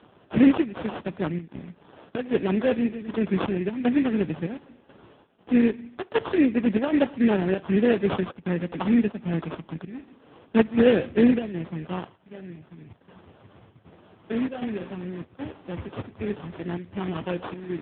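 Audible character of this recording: a quantiser's noise floor 10-bit, dither none; chopped level 1.3 Hz, depth 65%, duty 80%; aliases and images of a low sample rate 2.2 kHz, jitter 20%; AMR-NB

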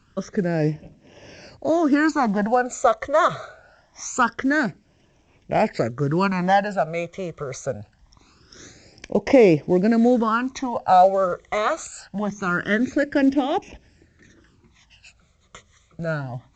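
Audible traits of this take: phasing stages 12, 0.24 Hz, lowest notch 270–1400 Hz; A-law

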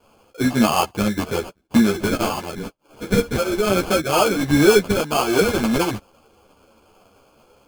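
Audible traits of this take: aliases and images of a low sample rate 1.9 kHz, jitter 0%; a shimmering, thickened sound

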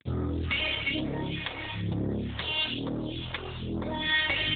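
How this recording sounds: a quantiser's noise floor 8-bit, dither none; phasing stages 2, 1.1 Hz, lowest notch 190–2900 Hz; AMR-NB

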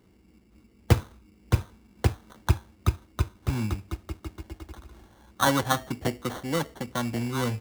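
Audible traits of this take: aliases and images of a low sample rate 2.5 kHz, jitter 0%

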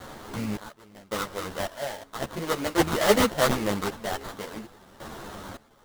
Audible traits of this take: a quantiser's noise floor 8-bit, dither triangular; random-step tremolo 1.8 Hz, depth 95%; aliases and images of a low sample rate 2.5 kHz, jitter 20%; a shimmering, thickened sound

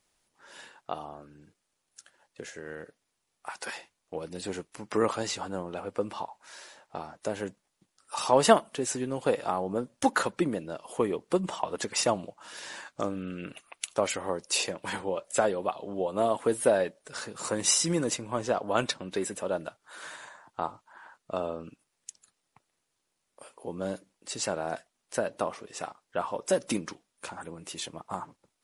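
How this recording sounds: noise floor -80 dBFS; spectral tilt -3.5 dB/octave

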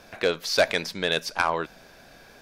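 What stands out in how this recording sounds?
noise floor -51 dBFS; spectral tilt -2.5 dB/octave

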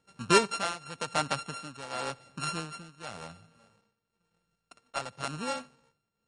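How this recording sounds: a buzz of ramps at a fixed pitch in blocks of 32 samples; tremolo triangle 0.94 Hz, depth 85%; MP3

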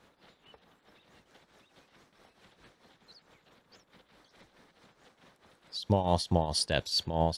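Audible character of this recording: tremolo triangle 4.6 Hz, depth 75%

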